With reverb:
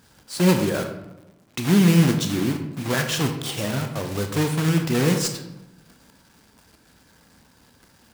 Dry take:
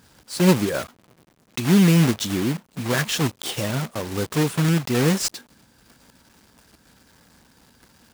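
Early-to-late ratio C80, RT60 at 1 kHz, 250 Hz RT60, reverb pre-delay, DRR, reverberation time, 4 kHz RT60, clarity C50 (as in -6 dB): 10.0 dB, 0.90 s, 1.2 s, 25 ms, 5.5 dB, 0.95 s, 0.55 s, 8.0 dB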